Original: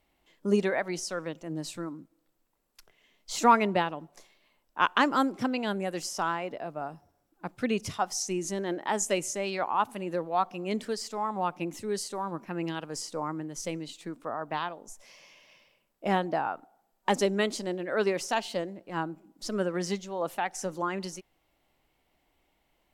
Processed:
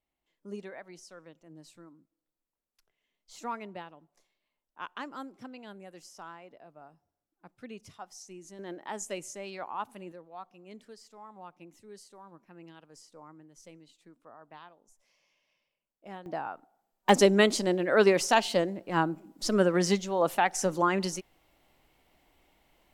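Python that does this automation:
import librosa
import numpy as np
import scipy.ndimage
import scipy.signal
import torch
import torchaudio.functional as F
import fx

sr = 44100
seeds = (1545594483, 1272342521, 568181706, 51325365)

y = fx.gain(x, sr, db=fx.steps((0.0, -16.0), (8.59, -9.0), (10.12, -17.5), (16.26, -6.0), (17.09, 5.5)))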